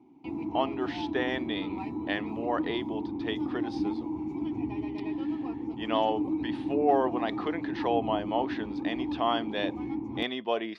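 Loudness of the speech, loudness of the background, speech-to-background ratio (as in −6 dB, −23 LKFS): −32.0 LKFS, −34.0 LKFS, 2.0 dB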